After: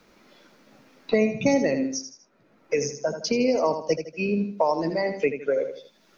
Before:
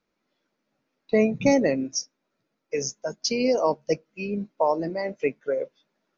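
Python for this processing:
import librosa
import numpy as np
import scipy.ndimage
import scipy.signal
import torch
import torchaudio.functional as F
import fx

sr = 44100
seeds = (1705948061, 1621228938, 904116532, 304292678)

y = fx.echo_feedback(x, sr, ms=79, feedback_pct=31, wet_db=-9.5)
y = fx.band_squash(y, sr, depth_pct=70)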